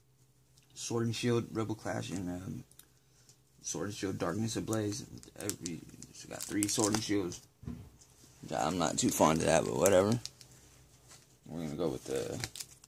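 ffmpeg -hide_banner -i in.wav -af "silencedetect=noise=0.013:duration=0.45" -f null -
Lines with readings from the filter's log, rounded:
silence_start: 0.00
silence_end: 0.78 | silence_duration: 0.78
silence_start: 2.80
silence_end: 3.67 | silence_duration: 0.87
silence_start: 7.73
silence_end: 8.44 | silence_duration: 0.71
silence_start: 10.41
silence_end: 11.52 | silence_duration: 1.11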